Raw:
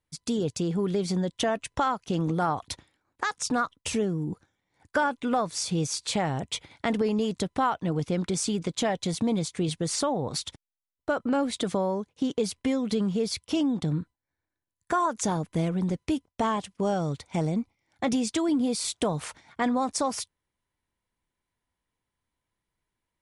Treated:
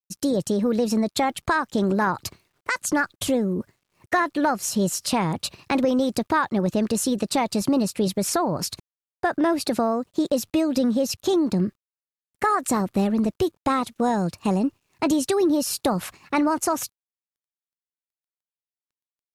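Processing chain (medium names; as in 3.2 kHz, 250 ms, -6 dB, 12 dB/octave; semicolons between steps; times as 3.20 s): word length cut 12-bit, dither none; tape speed +20%; bass shelf 340 Hz +3 dB; trim +3.5 dB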